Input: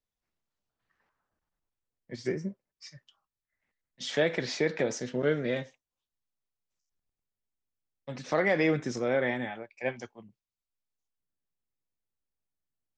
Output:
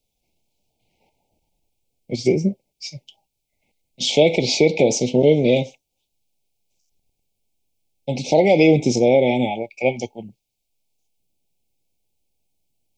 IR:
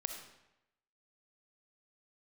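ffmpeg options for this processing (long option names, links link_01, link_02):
-filter_complex "[0:a]asplit=2[link_01][link_02];[link_02]alimiter=limit=-21.5dB:level=0:latency=1:release=120,volume=2.5dB[link_03];[link_01][link_03]amix=inputs=2:normalize=0,asuperstop=centerf=1400:order=20:qfactor=1.1,volume=8dB"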